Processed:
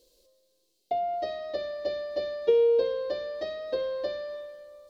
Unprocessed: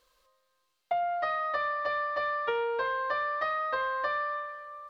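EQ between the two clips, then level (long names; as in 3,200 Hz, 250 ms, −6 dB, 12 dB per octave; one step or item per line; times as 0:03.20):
drawn EQ curve 140 Hz 0 dB, 380 Hz +12 dB, 730 Hz −4 dB, 1,200 Hz −26 dB, 4,300 Hz +3 dB
+3.5 dB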